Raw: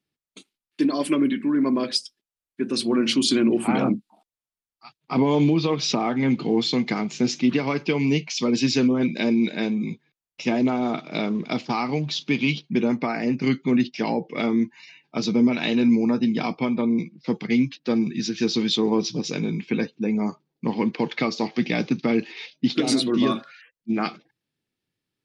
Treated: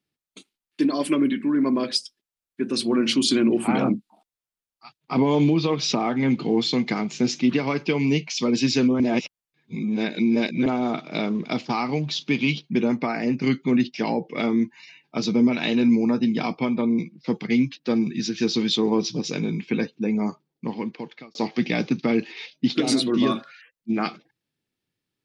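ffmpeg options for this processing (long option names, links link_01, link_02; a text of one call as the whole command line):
ffmpeg -i in.wav -filter_complex "[0:a]asplit=4[link_01][link_02][link_03][link_04];[link_01]atrim=end=9.002[link_05];[link_02]atrim=start=8.998:end=10.662,asetpts=PTS-STARTPTS,areverse[link_06];[link_03]atrim=start=10.658:end=21.35,asetpts=PTS-STARTPTS,afade=type=out:start_time=9.622:duration=1.07[link_07];[link_04]atrim=start=21.35,asetpts=PTS-STARTPTS,afade=type=in:duration=0.004:curve=hsin[link_08];[link_05][link_06]acrossfade=duration=0.004:curve1=hsin:curve2=hsin[link_09];[link_07][link_08]concat=n=2:v=0:a=1[link_10];[link_09][link_10]acrossfade=duration=0.004:curve1=hsin:curve2=hsin" out.wav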